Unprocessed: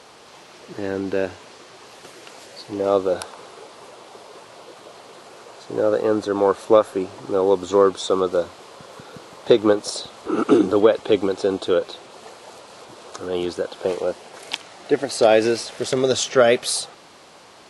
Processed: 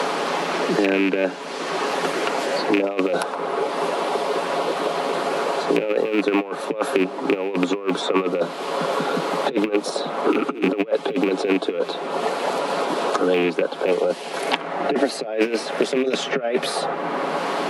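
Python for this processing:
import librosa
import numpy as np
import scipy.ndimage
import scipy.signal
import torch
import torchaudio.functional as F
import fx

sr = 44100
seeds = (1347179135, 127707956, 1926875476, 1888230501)

y = fx.rattle_buzz(x, sr, strikes_db=-27.0, level_db=-14.0)
y = fx.peak_eq(y, sr, hz=6700.0, db=fx.steps((0.0, -6.0), (3.35, -13.0)), octaves=2.1)
y = fx.over_compress(y, sr, threshold_db=-23.0, ratio=-0.5)
y = scipy.signal.sosfilt(scipy.signal.butter(16, 160.0, 'highpass', fs=sr, output='sos'), y)
y = fx.high_shelf(y, sr, hz=9800.0, db=-5.0)
y = y + 0.36 * np.pad(y, (int(7.2 * sr / 1000.0), 0))[:len(y)]
y = fx.band_squash(y, sr, depth_pct=100)
y = y * librosa.db_to_amplitude(3.5)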